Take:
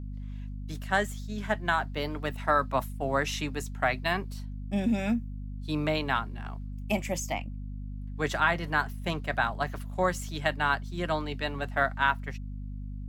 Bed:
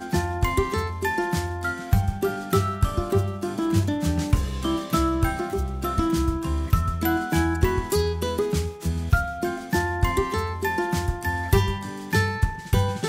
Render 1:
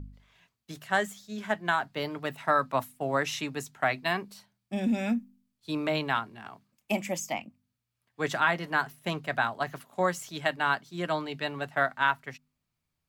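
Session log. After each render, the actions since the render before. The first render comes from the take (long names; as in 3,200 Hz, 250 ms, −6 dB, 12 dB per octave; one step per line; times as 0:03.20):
hum removal 50 Hz, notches 5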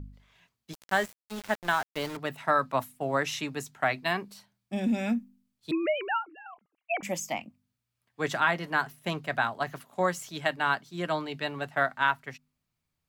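0:00.73–0:02.17: centre clipping without the shift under −35.5 dBFS
0:05.71–0:07.03: three sine waves on the formant tracks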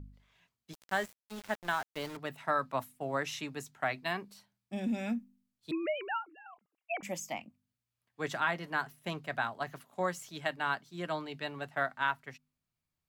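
level −6 dB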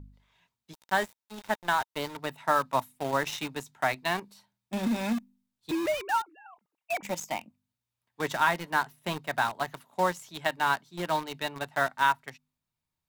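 in parallel at −3 dB: bit reduction 6 bits
on the sum: hollow resonant body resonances 920/3,700 Hz, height 8 dB, ringing for 25 ms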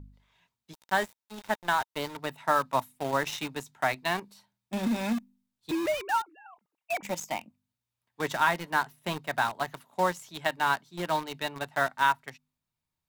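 no processing that can be heard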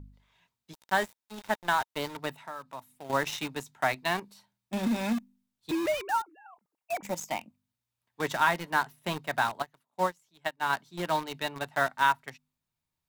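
0:02.34–0:03.10: downward compressor 2 to 1, threshold −49 dBFS
0:06.09–0:07.20: parametric band 2,800 Hz −6.5 dB 1.3 octaves
0:09.62–0:10.73: expander for the loud parts 2.5 to 1, over −36 dBFS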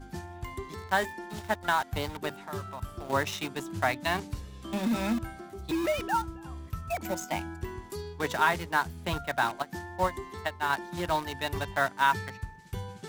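mix in bed −16 dB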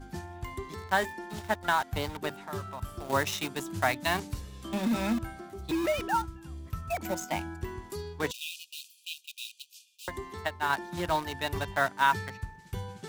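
0:02.85–0:04.69: high-shelf EQ 5,300 Hz +5.5 dB
0:06.25–0:06.65: parametric band 440 Hz → 1,400 Hz −12.5 dB 1.5 octaves
0:08.31–0:10.08: linear-phase brick-wall high-pass 2,400 Hz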